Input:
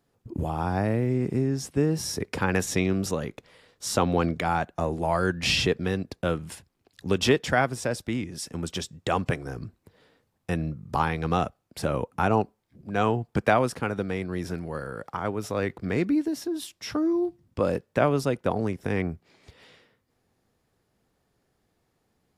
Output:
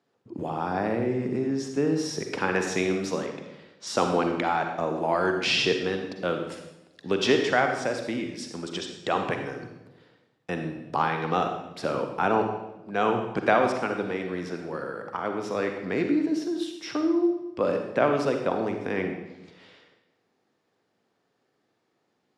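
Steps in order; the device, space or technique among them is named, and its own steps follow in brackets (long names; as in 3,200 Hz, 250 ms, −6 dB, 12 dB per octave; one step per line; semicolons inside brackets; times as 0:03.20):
supermarket ceiling speaker (band-pass filter 230–5,400 Hz; convolution reverb RT60 0.95 s, pre-delay 40 ms, DRR 4 dB)
0:03.26–0:03.87: low-pass filter 7,000 Hz 12 dB per octave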